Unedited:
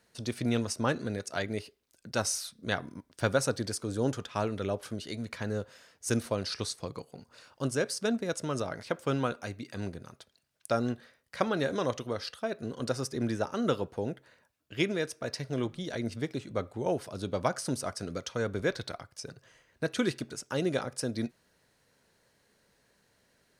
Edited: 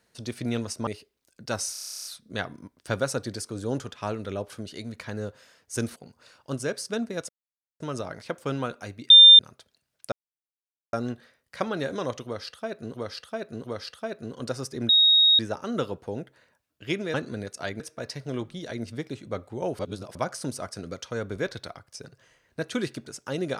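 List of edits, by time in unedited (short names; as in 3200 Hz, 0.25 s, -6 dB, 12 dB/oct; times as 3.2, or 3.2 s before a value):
0.87–1.53 move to 15.04
2.38 stutter 0.03 s, 12 plays
6.29–7.08 cut
8.41 insert silence 0.51 s
9.71–10 bleep 3600 Hz -7 dBFS
10.73 insert silence 0.81 s
12.04–12.74 loop, 3 plays
13.29 add tone 3760 Hz -14.5 dBFS 0.50 s
17.03–17.39 reverse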